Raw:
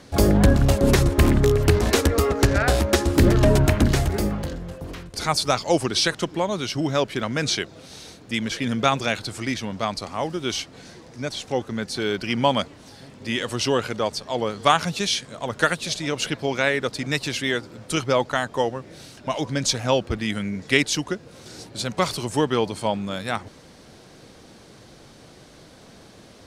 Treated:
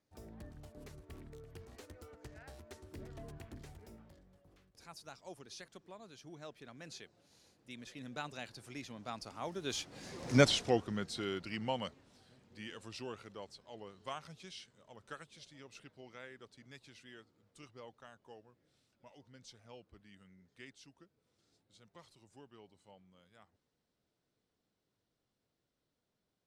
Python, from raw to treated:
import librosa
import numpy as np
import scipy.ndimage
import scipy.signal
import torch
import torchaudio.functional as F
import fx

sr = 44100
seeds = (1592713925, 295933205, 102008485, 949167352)

y = fx.doppler_pass(x, sr, speed_mps=26, closest_m=2.4, pass_at_s=10.37)
y = F.gain(torch.from_numpy(y), 5.5).numpy()